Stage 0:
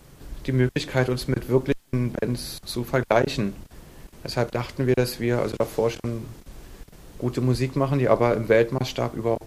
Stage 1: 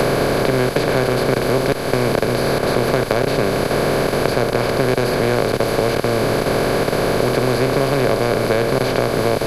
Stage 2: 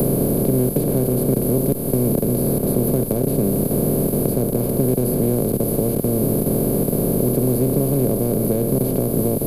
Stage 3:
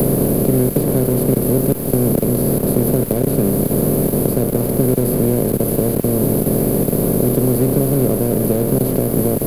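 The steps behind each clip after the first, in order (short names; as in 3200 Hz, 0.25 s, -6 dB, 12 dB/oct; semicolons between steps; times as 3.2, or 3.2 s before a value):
per-bin compression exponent 0.2; three-band squash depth 100%; gain -4 dB
EQ curve 110 Hz 0 dB, 200 Hz +6 dB, 580 Hz -7 dB, 1700 Hz -26 dB, 2900 Hz -19 dB, 5900 Hz -16 dB, 13000 Hz +15 dB
crossover distortion -34.5 dBFS; gain +4 dB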